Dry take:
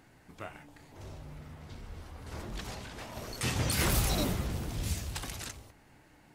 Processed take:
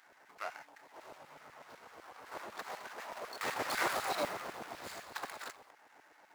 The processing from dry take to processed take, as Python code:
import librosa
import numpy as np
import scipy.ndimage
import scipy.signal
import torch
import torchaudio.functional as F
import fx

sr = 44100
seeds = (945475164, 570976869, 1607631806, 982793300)

y = scipy.signal.medfilt(x, 15)
y = fx.filter_lfo_highpass(y, sr, shape='saw_down', hz=8.0, low_hz=500.0, high_hz=1900.0, q=1.0)
y = y * librosa.db_to_amplitude(5.0)